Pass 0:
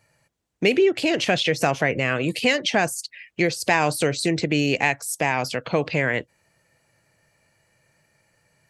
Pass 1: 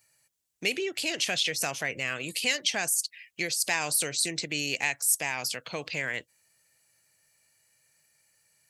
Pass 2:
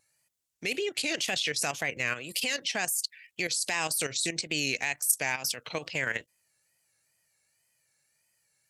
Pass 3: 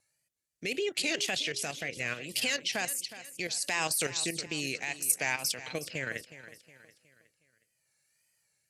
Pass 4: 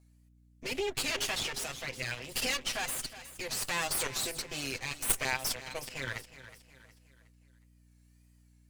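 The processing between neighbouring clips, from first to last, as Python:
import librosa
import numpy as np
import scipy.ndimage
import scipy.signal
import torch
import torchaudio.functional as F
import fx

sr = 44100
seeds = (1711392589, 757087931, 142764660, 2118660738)

y1 = librosa.effects.preemphasis(x, coef=0.9, zi=[0.0])
y1 = y1 * 10.0 ** (4.0 / 20.0)
y2 = fx.wow_flutter(y1, sr, seeds[0], rate_hz=2.1, depth_cents=100.0)
y2 = fx.level_steps(y2, sr, step_db=11)
y2 = y2 * 10.0 ** (3.5 / 20.0)
y3 = fx.rotary(y2, sr, hz=0.7)
y3 = fx.echo_feedback(y3, sr, ms=365, feedback_pct=42, wet_db=-14.5)
y4 = fx.lower_of_two(y3, sr, delay_ms=7.8)
y4 = fx.add_hum(y4, sr, base_hz=60, snr_db=25)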